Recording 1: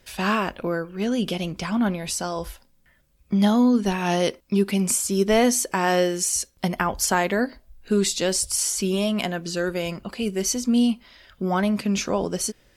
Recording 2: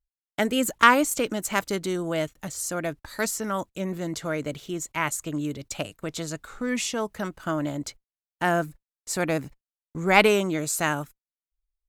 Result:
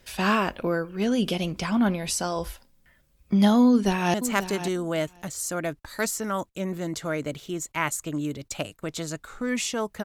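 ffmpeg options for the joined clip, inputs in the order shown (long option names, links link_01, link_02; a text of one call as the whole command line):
ffmpeg -i cue0.wav -i cue1.wav -filter_complex "[0:a]apad=whole_dur=10.04,atrim=end=10.04,atrim=end=4.142[link_01];[1:a]atrim=start=1.338:end=7.24[link_02];[link_01][link_02]acrossfade=duration=0.004:curve1=hsin:curve2=hsin,asplit=2[link_03][link_04];[link_04]afade=type=in:start_time=3.67:duration=0.01,afade=type=out:start_time=4.14:duration=0.01,aecho=0:1:540|1080:0.266073|0.0266073[link_05];[link_03][link_05]amix=inputs=2:normalize=0" out.wav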